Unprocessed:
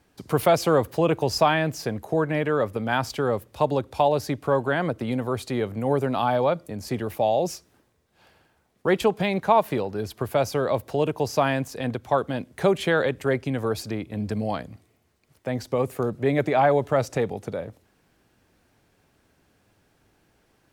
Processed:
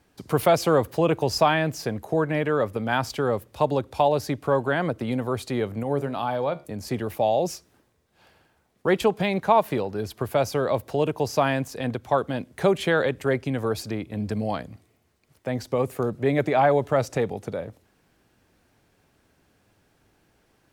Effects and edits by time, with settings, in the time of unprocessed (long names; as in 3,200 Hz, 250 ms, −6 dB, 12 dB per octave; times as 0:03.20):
0:05.83–0:06.65: tuned comb filter 71 Hz, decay 0.39 s, mix 50%